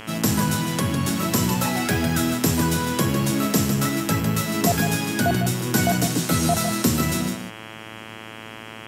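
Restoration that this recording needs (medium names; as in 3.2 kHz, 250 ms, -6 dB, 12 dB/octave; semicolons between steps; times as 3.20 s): de-hum 110.2 Hz, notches 30; inverse comb 154 ms -8 dB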